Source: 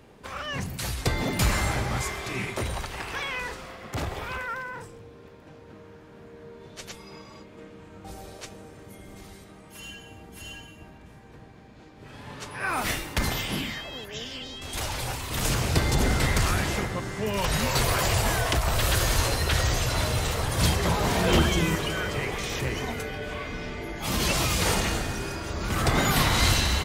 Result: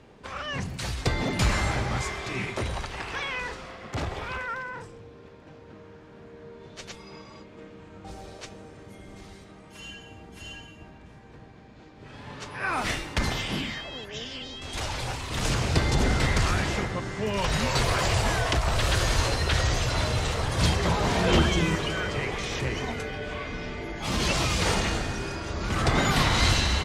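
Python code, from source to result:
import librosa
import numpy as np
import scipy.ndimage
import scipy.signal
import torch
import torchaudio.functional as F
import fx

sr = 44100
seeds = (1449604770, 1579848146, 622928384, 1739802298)

y = scipy.signal.sosfilt(scipy.signal.butter(2, 7000.0, 'lowpass', fs=sr, output='sos'), x)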